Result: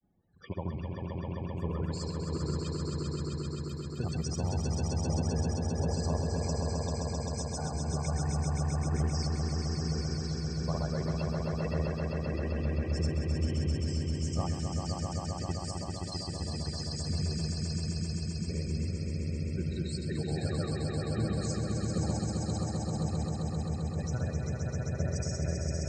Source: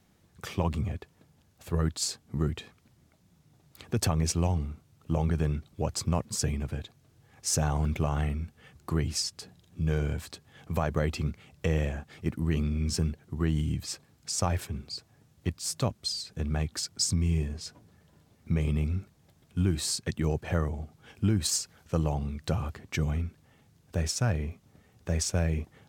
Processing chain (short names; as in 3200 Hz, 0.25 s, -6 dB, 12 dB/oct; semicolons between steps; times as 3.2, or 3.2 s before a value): loudest bins only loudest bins 32; grains, pitch spread up and down by 0 st; swelling echo 0.131 s, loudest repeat 5, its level -4 dB; gain -6.5 dB